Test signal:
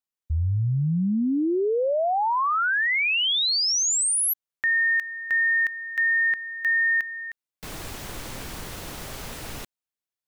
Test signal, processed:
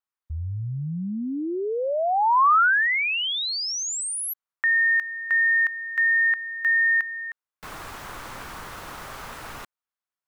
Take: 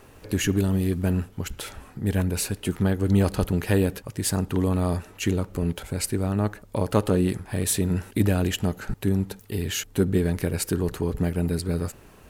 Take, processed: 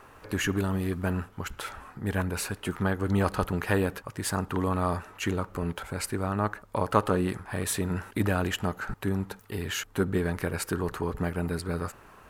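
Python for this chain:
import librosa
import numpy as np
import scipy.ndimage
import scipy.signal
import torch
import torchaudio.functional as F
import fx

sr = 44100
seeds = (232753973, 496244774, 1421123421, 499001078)

y = fx.peak_eq(x, sr, hz=1200.0, db=13.0, octaves=1.6)
y = F.gain(torch.from_numpy(y), -6.5).numpy()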